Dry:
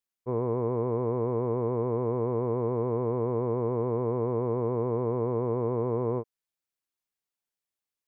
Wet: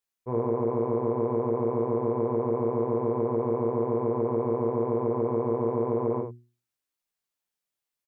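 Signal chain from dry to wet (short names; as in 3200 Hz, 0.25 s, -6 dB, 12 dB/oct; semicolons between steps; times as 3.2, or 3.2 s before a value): notches 60/120/180/240/300/360 Hz; early reflections 17 ms -3 dB, 76 ms -5 dB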